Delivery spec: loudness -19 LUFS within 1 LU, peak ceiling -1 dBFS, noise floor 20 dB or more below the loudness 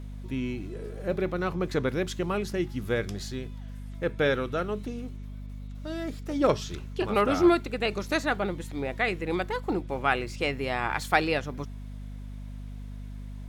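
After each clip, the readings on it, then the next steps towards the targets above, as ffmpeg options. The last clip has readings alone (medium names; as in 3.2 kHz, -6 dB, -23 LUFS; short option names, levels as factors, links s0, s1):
hum 50 Hz; highest harmonic 250 Hz; hum level -36 dBFS; loudness -29.0 LUFS; peak level -7.5 dBFS; loudness target -19.0 LUFS
-> -af "bandreject=f=50:t=h:w=6,bandreject=f=100:t=h:w=6,bandreject=f=150:t=h:w=6,bandreject=f=200:t=h:w=6,bandreject=f=250:t=h:w=6"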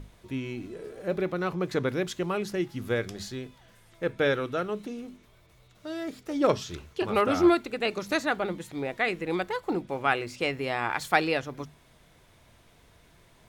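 hum not found; loudness -29.0 LUFS; peak level -7.5 dBFS; loudness target -19.0 LUFS
-> -af "volume=3.16,alimiter=limit=0.891:level=0:latency=1"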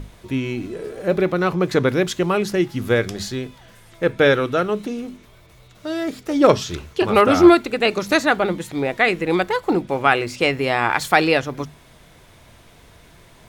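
loudness -19.0 LUFS; peak level -1.0 dBFS; noise floor -49 dBFS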